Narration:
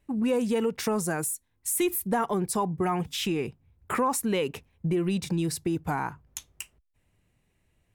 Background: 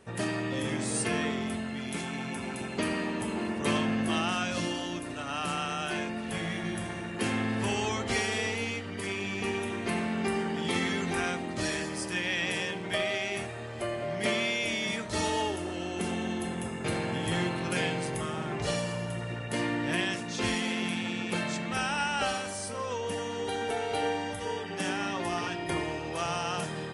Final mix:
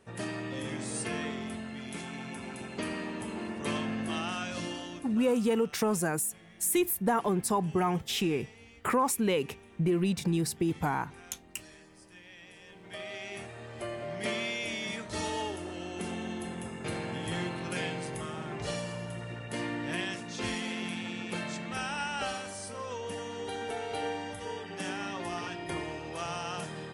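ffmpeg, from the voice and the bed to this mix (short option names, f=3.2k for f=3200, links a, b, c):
-filter_complex "[0:a]adelay=4950,volume=-1dB[a];[1:a]volume=12dB,afade=t=out:st=4.76:d=0.65:silence=0.149624,afade=t=in:st=12.61:d=1.15:silence=0.141254[b];[a][b]amix=inputs=2:normalize=0"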